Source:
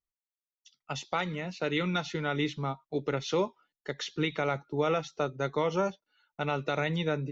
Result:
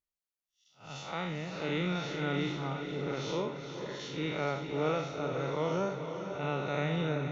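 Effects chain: time blur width 0.154 s; diffused feedback echo 0.467 s, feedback 53%, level -7 dB

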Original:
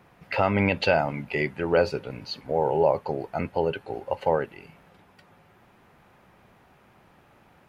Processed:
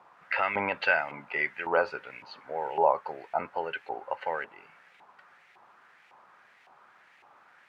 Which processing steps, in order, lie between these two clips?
bit-crush 10-bit; LFO band-pass saw up 1.8 Hz 910–2300 Hz; gain +6.5 dB

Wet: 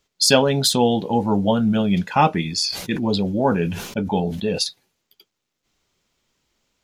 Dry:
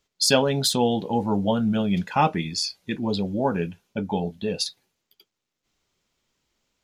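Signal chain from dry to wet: 2.43–4.61 sustainer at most 61 dB/s; gain +4 dB

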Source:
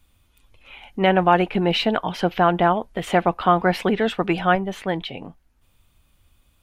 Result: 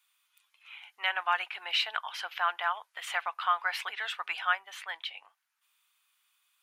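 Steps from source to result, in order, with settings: HPF 1100 Hz 24 dB/oct; gain -4.5 dB

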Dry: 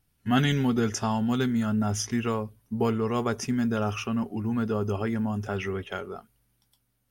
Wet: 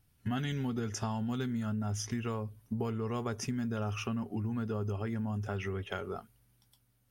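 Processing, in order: bell 100 Hz +6 dB 0.78 oct; compressor 6:1, threshold -32 dBFS, peak gain reduction 14 dB

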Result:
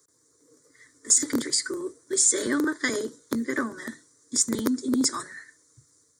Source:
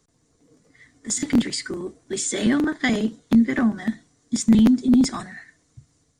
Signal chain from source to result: HPF 150 Hz 12 dB/oct; high shelf 4200 Hz +10.5 dB; fixed phaser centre 740 Hz, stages 6

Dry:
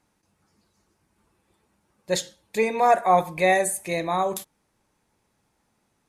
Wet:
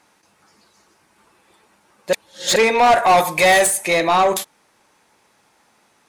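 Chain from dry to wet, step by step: 3.07–3.67 high shelf 4800 Hz +11 dB; overdrive pedal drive 22 dB, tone 6000 Hz, clips at -5.5 dBFS; 2.13–2.56 reverse

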